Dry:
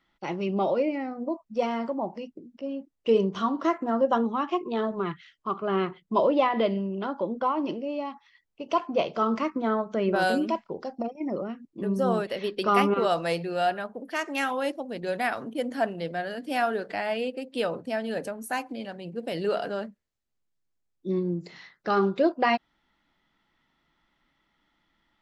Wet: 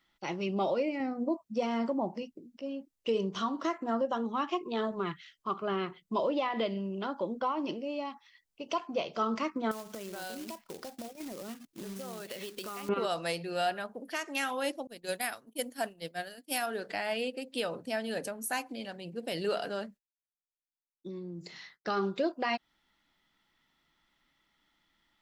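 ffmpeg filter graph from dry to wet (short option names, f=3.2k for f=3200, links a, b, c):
-filter_complex "[0:a]asettb=1/sr,asplit=3[a][b][c];[a]atrim=end=1.004[d];[b]atrim=start=1:end=2.23,asetpts=PTS-STARTPTS,afade=t=in:d=0.004:c=qsin,afade=t=out:st=1.226:d=0.004:c=qsin,highpass=f=180:p=1,lowshelf=f=340:g=11.5[e];[c]atrim=start=2.226[f];[d][e]acrossfade=d=0.004:c1=hsin:c2=qsin[g];[g][f]acrossfade=d=0.004:c1=qsin:c2=hsin,asettb=1/sr,asplit=3[h][i][j];[h]atrim=end=9.714[k];[i]atrim=start=9.71:end=12.89,asetpts=PTS-STARTPTS,afade=t=in:d=0.004:c=qsin,afade=t=out:st=3.176:d=0.004:c=qsin,acrusher=bits=3:mode=log:mix=0:aa=0.000001,acompressor=threshold=-33dB:ratio=12:attack=3.2:release=140:knee=1:detection=peak[l];[j]atrim=start=12.886[m];[k][l]acrossfade=d=0.004:c1=hsin:c2=qsin[n];[n][m]acrossfade=d=0.004:c1=qsin:c2=hsin,asettb=1/sr,asplit=3[o][p][q];[o]atrim=end=14.874[r];[p]atrim=start=14.87:end=16.66,asetpts=PTS-STARTPTS,afade=t=in:d=0.004:c=qsin,afade=t=out:st=1.786:d=0.004:c=qsin,agate=range=-33dB:threshold=-27dB:ratio=3:release=100:detection=peak,aemphasis=mode=production:type=50fm[s];[q]atrim=start=16.656[t];[r][s]acrossfade=d=0.004:c1=hsin:c2=qsin[u];[u][t]acrossfade=d=0.004:c1=qsin:c2=hsin,asettb=1/sr,asplit=3[v][w][x];[v]atrim=end=19.844[y];[w]atrim=start=19.84:end=21.87,asetpts=PTS-STARTPTS,afade=t=in:d=0.004:c=qsin,afade=t=out:st=2.026:d=0.004:c=qsin,agate=range=-33dB:threshold=-59dB:ratio=3:release=100:detection=peak,acompressor=threshold=-32dB:ratio=10:attack=3.2:release=140:knee=1:detection=peak[z];[x]atrim=start=21.866[aa];[y][z]acrossfade=d=0.004:c1=hsin:c2=qsin[ab];[ab][aa]acrossfade=d=0.004:c1=qsin:c2=hsin,highshelf=f=2.9k:g=10.5,alimiter=limit=-16dB:level=0:latency=1:release=241,volume=-5dB"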